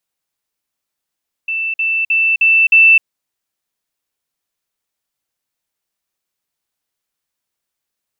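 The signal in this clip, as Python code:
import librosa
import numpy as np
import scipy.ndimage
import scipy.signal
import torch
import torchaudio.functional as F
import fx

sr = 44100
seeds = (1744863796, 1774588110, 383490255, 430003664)

y = fx.level_ladder(sr, hz=2660.0, from_db=-16.5, step_db=3.0, steps=5, dwell_s=0.26, gap_s=0.05)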